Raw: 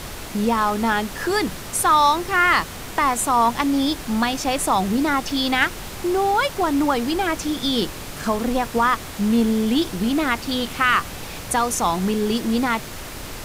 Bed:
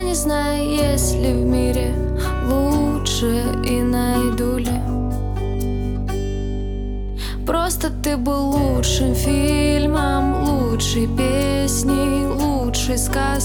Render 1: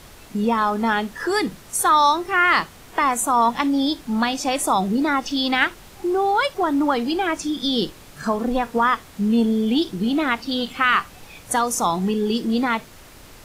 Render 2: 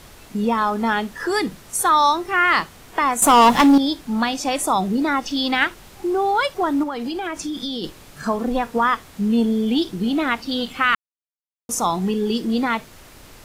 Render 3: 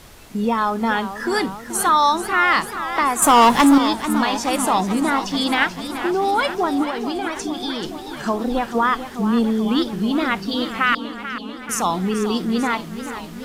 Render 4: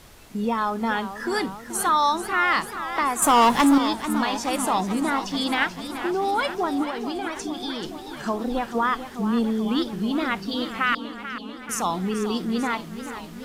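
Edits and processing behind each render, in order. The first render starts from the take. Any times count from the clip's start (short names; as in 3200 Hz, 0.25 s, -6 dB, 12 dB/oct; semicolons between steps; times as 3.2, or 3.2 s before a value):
noise print and reduce 11 dB
3.22–3.78 sample leveller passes 3; 6.83–7.84 compressor, threshold -23 dBFS; 10.95–11.69 mute
warbling echo 0.437 s, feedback 73%, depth 142 cents, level -11.5 dB
gain -4.5 dB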